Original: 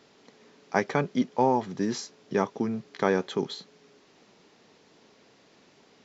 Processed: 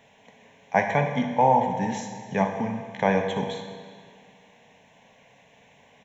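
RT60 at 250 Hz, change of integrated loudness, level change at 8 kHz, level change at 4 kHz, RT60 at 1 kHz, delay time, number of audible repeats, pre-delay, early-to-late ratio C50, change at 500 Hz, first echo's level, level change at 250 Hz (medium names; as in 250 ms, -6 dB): 2.0 s, +3.5 dB, no reading, -0.5 dB, 2.0 s, 61 ms, 1, 21 ms, 5.5 dB, +2.0 dB, -13.0 dB, +0.5 dB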